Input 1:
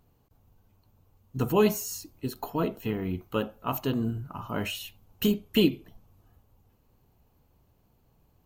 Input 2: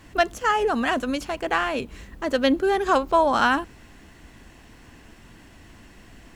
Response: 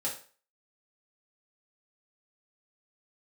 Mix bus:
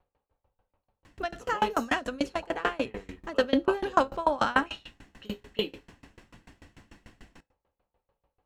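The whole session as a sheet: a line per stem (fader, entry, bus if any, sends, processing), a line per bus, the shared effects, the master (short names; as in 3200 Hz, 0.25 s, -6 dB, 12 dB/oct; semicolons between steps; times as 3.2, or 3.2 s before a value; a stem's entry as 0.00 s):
-7.0 dB, 0.00 s, send -4 dB, low-pass opened by the level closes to 2700 Hz, open at -23 dBFS; graphic EQ 125/250/500/1000/2000/4000/8000 Hz -10/-6/+7/+4/+5/+5/-3 dB
+0.5 dB, 1.05 s, send -12.5 dB, dry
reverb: on, RT60 0.40 s, pre-delay 3 ms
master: high shelf 11000 Hz -10.5 dB; dB-ramp tremolo decaying 6.8 Hz, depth 27 dB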